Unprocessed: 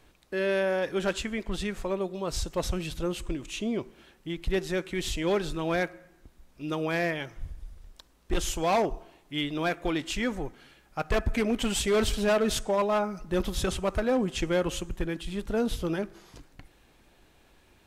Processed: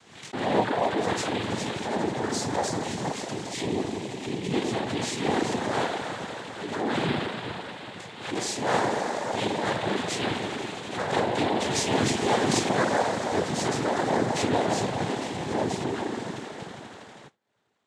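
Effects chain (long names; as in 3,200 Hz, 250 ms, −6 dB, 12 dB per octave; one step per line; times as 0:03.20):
peak hold with a decay on every bin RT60 0.48 s
high-shelf EQ 3,900 Hz +6.5 dB
on a send: echo that builds up and dies away 81 ms, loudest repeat 5, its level −15 dB
on the sum: dynamic equaliser 2,900 Hz, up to −4 dB, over −43 dBFS, Q 1.2
spring reverb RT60 2.7 s, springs 41 ms, chirp 80 ms, DRR −1 dB
noise gate with hold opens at −32 dBFS
reverb reduction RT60 0.51 s
cochlear-implant simulation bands 6
background raised ahead of every attack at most 82 dB per second
level −1.5 dB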